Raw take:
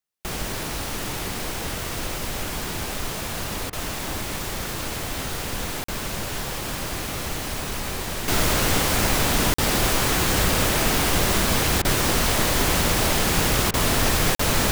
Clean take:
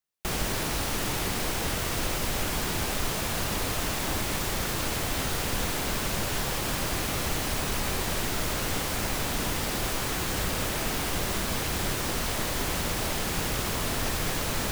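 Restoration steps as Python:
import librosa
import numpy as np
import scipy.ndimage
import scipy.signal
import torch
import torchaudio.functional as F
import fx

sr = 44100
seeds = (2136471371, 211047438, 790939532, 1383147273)

y = fx.fix_interpolate(x, sr, at_s=(5.84, 9.54, 14.35), length_ms=44.0)
y = fx.fix_interpolate(y, sr, at_s=(3.7, 11.82, 13.71), length_ms=27.0)
y = fx.fix_level(y, sr, at_s=8.28, step_db=-8.5)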